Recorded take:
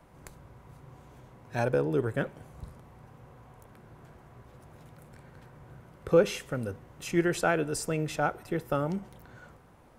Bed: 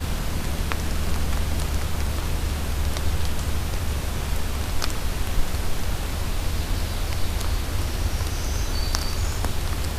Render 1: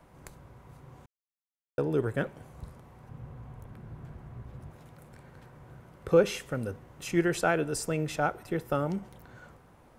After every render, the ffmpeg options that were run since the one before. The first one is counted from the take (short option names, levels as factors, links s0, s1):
-filter_complex "[0:a]asettb=1/sr,asplit=3[s0][s1][s2];[s0]atrim=end=3.094[s3];[s1]atrim=start=3.09:end=4.71,asetpts=PTS-STARTPTS,afade=t=in:d=0.004:c=qsin,afade=t=out:st=1.616:d=0.004:c=qsin,bass=f=250:g=10,treble=f=4000:g=-4[s4];[s2]atrim=start=4.706[s5];[s3][s4]acrossfade=d=0.004:c1=hsin:c2=qsin[s6];[s6][s5]acrossfade=d=0.004:c1=qsin:c2=hsin,asplit=3[s7][s8][s9];[s7]atrim=end=1.06,asetpts=PTS-STARTPTS,afade=t=out:st=1.056:d=0.004:c=hsin[s10];[s8]atrim=start=1.06:end=1.78,asetpts=PTS-STARTPTS,volume=0[s11];[s9]atrim=start=1.78,asetpts=PTS-STARTPTS,afade=t=in:d=0.004:c=hsin[s12];[s10][s11][s12]concat=n=3:v=0:a=1"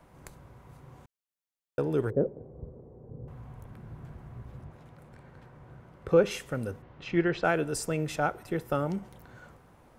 -filter_complex "[0:a]asettb=1/sr,asplit=3[s0][s1][s2];[s0]atrim=end=2.104[s3];[s1]atrim=start=2.1:end=3.28,asetpts=PTS-STARTPTS,afade=t=in:d=0.004:c=qsin,afade=t=out:st=1.176:d=0.004:c=qsin,lowpass=f=450:t=q:w=3.5[s4];[s2]atrim=start=3.276[s5];[s3][s4]acrossfade=d=0.004:c1=hsin:c2=qsin[s6];[s6][s5]acrossfade=d=0.004:c1=qsin:c2=hsin,asettb=1/sr,asplit=3[s7][s8][s9];[s7]atrim=end=4.614[s10];[s8]atrim=start=4.61:end=6.31,asetpts=PTS-STARTPTS,afade=t=in:d=0.004:c=qsin,afade=t=out:st=1.696:d=0.004:c=qsin,lowpass=f=3600:p=1[s11];[s9]atrim=start=6.306[s12];[s10][s11]acrossfade=d=0.004:c1=hsin:c2=qsin[s13];[s13][s12]acrossfade=d=0.004:c1=qsin:c2=hsin,asplit=3[s14][s15][s16];[s14]afade=t=out:st=6.81:d=0.02[s17];[s15]lowpass=f=4100:w=0.5412,lowpass=f=4100:w=1.3066,afade=t=in:st=6.81:d=0.02,afade=t=out:st=7.43:d=0.02[s18];[s16]afade=t=in:st=7.43:d=0.02[s19];[s17][s18][s19]amix=inputs=3:normalize=0"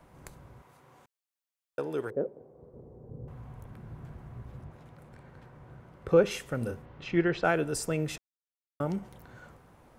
-filter_complex "[0:a]asettb=1/sr,asplit=3[s0][s1][s2];[s0]atrim=end=0.624[s3];[s1]atrim=start=0.62:end=2.74,asetpts=PTS-STARTPTS,afade=t=in:d=0.004:c=qsin,afade=t=out:st=2.116:d=0.004:c=qsin,highpass=f=550:p=1[s4];[s2]atrim=start=2.736[s5];[s3][s4]acrossfade=d=0.004:c1=hsin:c2=qsin[s6];[s6][s5]acrossfade=d=0.004:c1=qsin:c2=hsin,asettb=1/sr,asplit=3[s7][s8][s9];[s7]atrim=end=6.584[s10];[s8]atrim=start=6.58:end=7.06,asetpts=PTS-STARTPTS,afade=t=in:d=0.004:c=qsin,afade=t=out:st=0.476:d=0.004:c=qsin,asplit=2[s11][s12];[s12]adelay=34,volume=0.501[s13];[s11][s13]amix=inputs=2:normalize=0,atrim=end_sample=21168[s14];[s9]atrim=start=7.056[s15];[s10][s14]acrossfade=d=0.004:c1=hsin:c2=qsin[s16];[s16][s15]acrossfade=d=0.004:c1=qsin:c2=hsin,asplit=3[s17][s18][s19];[s17]atrim=end=8.18,asetpts=PTS-STARTPTS,afade=t=out:st=8.176:d=0.004:c=hsin[s20];[s18]atrim=start=8.18:end=8.8,asetpts=PTS-STARTPTS,volume=0[s21];[s19]atrim=start=8.8,asetpts=PTS-STARTPTS,afade=t=in:d=0.004:c=hsin[s22];[s20][s21][s22]concat=n=3:v=0:a=1"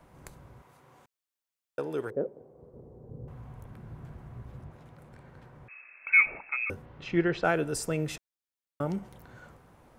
-filter_complex "[0:a]asettb=1/sr,asplit=3[s0][s1][s2];[s0]atrim=end=5.684[s3];[s1]atrim=start=5.68:end=6.7,asetpts=PTS-STARTPTS,afade=t=in:d=0.004:c=qsin,afade=t=out:st=1.016:d=0.004:c=qsin,lowpass=f=2300:t=q:w=0.5098,lowpass=f=2300:t=q:w=0.6013,lowpass=f=2300:t=q:w=0.9,lowpass=f=2300:t=q:w=2.563,afreqshift=-2700[s4];[s2]atrim=start=6.696[s5];[s3][s4]acrossfade=d=0.004:c1=hsin:c2=qsin[s6];[s6][s5]acrossfade=d=0.004:c1=qsin:c2=hsin"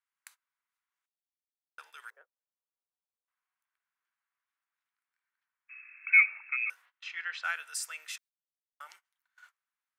-af "highpass=f=1400:w=0.5412,highpass=f=1400:w=1.3066,agate=range=0.0562:threshold=0.00158:ratio=16:detection=peak"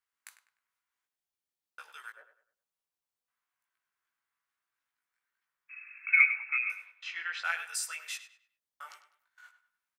-filter_complex "[0:a]asplit=2[s0][s1];[s1]adelay=18,volume=0.708[s2];[s0][s2]amix=inputs=2:normalize=0,asplit=2[s3][s4];[s4]adelay=100,lowpass=f=4000:p=1,volume=0.282,asplit=2[s5][s6];[s6]adelay=100,lowpass=f=4000:p=1,volume=0.35,asplit=2[s7][s8];[s8]adelay=100,lowpass=f=4000:p=1,volume=0.35,asplit=2[s9][s10];[s10]adelay=100,lowpass=f=4000:p=1,volume=0.35[s11];[s5][s7][s9][s11]amix=inputs=4:normalize=0[s12];[s3][s12]amix=inputs=2:normalize=0"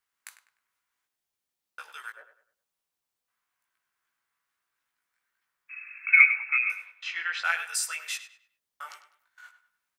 -af "volume=1.88"